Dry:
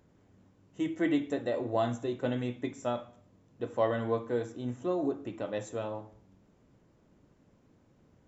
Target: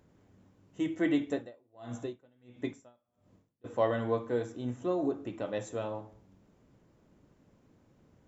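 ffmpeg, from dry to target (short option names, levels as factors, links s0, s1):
-filter_complex "[0:a]asplit=3[s0][s1][s2];[s0]afade=t=out:st=1.24:d=0.02[s3];[s1]aeval=exprs='val(0)*pow(10,-36*(0.5-0.5*cos(2*PI*1.5*n/s))/20)':c=same,afade=t=in:st=1.24:d=0.02,afade=t=out:st=3.64:d=0.02[s4];[s2]afade=t=in:st=3.64:d=0.02[s5];[s3][s4][s5]amix=inputs=3:normalize=0"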